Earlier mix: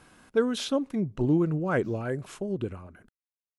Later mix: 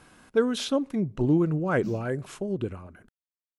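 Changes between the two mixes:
speech: send +6.0 dB
background +10.5 dB

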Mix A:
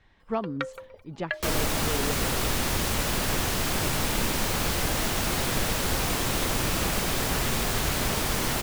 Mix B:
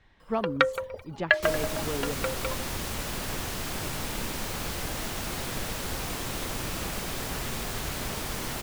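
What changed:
first sound +10.0 dB
second sound −6.5 dB

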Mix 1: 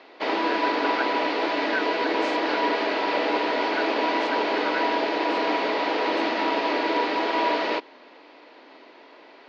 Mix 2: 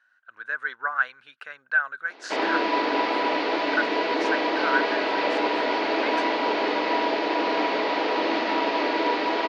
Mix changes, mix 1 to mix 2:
speech +7.5 dB
background: entry +2.10 s

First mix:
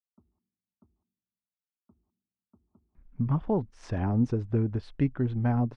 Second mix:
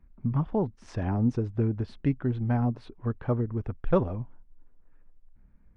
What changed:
speech: entry −2.95 s
background +5.0 dB

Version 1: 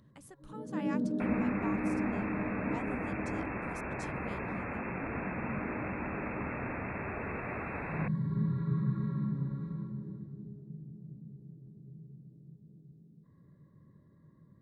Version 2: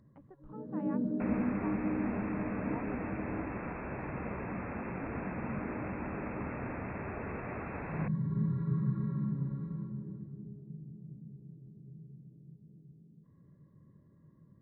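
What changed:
speech: add low-pass filter 1,200 Hz 12 dB per octave
master: add head-to-tape spacing loss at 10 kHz 26 dB

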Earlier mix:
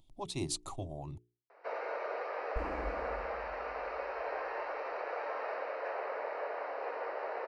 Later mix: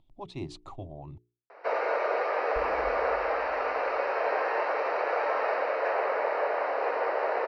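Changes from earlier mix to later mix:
speech: add low-pass filter 2,800 Hz 12 dB per octave
first sound +12.0 dB
reverb: off

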